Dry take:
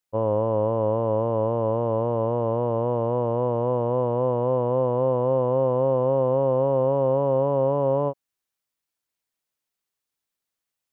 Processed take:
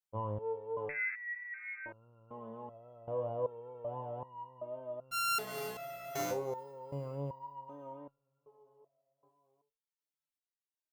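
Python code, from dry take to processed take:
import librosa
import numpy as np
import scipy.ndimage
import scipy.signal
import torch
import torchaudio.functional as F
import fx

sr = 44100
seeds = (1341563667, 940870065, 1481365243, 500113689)

p1 = fx.sample_sort(x, sr, block=64, at=(5.11, 6.31))
p2 = fx.dereverb_blind(p1, sr, rt60_s=0.74)
p3 = p2 + fx.echo_feedback(p2, sr, ms=401, feedback_pct=53, wet_db=-21.0, dry=0)
p4 = fx.freq_invert(p3, sr, carrier_hz=2500, at=(0.89, 1.86))
y = fx.resonator_held(p4, sr, hz=2.6, low_hz=100.0, high_hz=1400.0)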